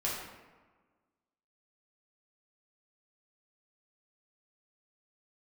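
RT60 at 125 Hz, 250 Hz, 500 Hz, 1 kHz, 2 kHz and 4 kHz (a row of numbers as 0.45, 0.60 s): 1.4, 1.6, 1.4, 1.4, 1.1, 0.75 s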